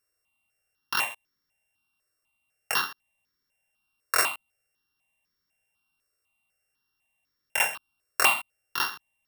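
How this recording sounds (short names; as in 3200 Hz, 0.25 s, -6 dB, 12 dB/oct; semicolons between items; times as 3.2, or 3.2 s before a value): a buzz of ramps at a fixed pitch in blocks of 16 samples; notches that jump at a steady rate 4 Hz 850–2700 Hz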